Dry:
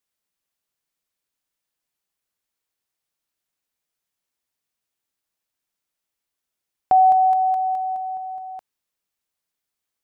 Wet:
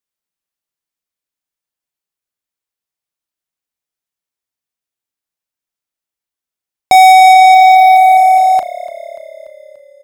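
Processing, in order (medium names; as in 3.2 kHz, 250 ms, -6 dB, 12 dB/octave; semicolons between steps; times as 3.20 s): waveshaping leveller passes 5; doubling 36 ms -13 dB; frequency-shifting echo 291 ms, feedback 63%, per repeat -35 Hz, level -18.5 dB; trim +6 dB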